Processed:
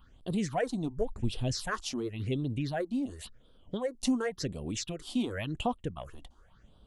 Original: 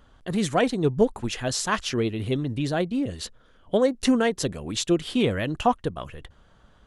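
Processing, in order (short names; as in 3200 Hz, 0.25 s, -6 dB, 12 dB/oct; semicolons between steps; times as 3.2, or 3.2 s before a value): 0.74–1.77 low shelf 160 Hz +11 dB; compressor 1.5:1, threshold -30 dBFS, peak gain reduction 7 dB; phaser stages 6, 0.92 Hz, lowest notch 110–1900 Hz; gain -3 dB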